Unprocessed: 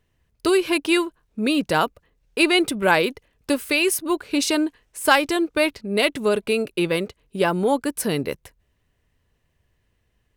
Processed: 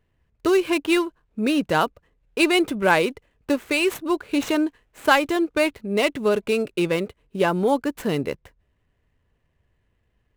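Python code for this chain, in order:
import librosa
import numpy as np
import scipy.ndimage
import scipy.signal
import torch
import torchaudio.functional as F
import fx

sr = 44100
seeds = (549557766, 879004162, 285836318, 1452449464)

y = scipy.signal.medfilt(x, 9)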